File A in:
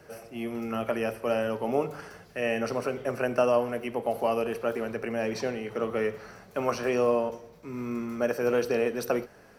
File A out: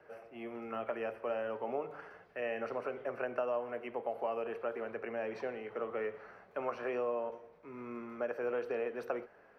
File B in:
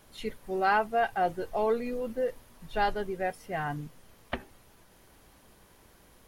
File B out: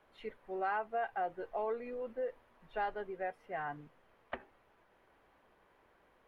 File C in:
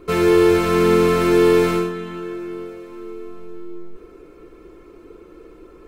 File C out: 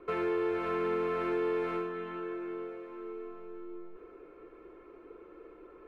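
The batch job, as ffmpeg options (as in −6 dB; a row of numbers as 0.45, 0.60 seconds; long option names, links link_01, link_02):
-filter_complex "[0:a]acrossover=split=350 2700:gain=0.251 1 0.0708[link_01][link_02][link_03];[link_01][link_02][link_03]amix=inputs=3:normalize=0,acompressor=threshold=-28dB:ratio=2.5,volume=-5dB"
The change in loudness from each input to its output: −9.5, −9.0, −17.5 LU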